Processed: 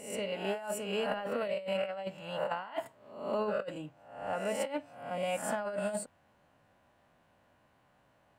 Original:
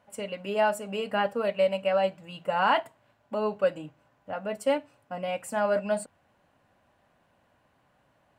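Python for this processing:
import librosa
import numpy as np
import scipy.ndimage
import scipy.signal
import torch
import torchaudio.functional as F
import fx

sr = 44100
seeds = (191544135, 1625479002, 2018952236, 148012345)

y = fx.spec_swells(x, sr, rise_s=0.67)
y = fx.over_compress(y, sr, threshold_db=-27.0, ratio=-0.5)
y = y * librosa.db_to_amplitude(-6.0)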